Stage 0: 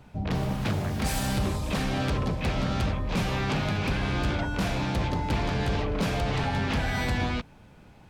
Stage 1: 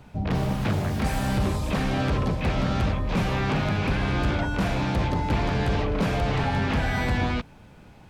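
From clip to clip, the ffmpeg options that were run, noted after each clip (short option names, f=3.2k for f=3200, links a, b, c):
-filter_complex "[0:a]acrossover=split=2600[a][b];[b]acompressor=threshold=-42dB:ratio=4:attack=1:release=60[c];[a][c]amix=inputs=2:normalize=0,volume=3dB"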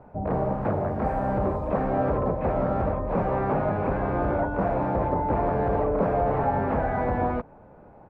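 -af "firequalizer=gain_entry='entry(130,0);entry(550,13);entry(3200,-21);entry(5700,-25)':delay=0.05:min_phase=1,volume=-5dB"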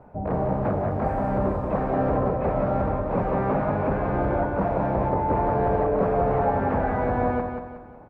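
-af "aecho=1:1:183|366|549|732|915:0.501|0.205|0.0842|0.0345|0.0142"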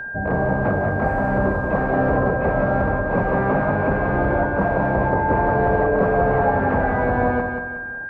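-af "aeval=exprs='val(0)+0.0251*sin(2*PI*1600*n/s)':c=same,volume=4dB"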